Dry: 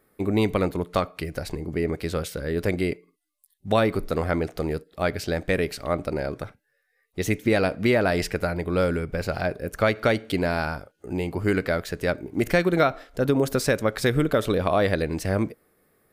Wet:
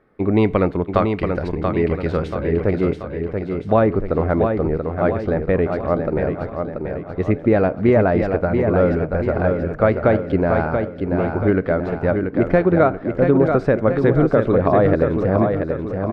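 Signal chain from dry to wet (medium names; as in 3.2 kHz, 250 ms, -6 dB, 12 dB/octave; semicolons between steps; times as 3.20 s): low-pass 2.1 kHz 12 dB/octave, from 2.35 s 1.2 kHz; feedback delay 683 ms, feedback 50%, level -5.5 dB; trim +6 dB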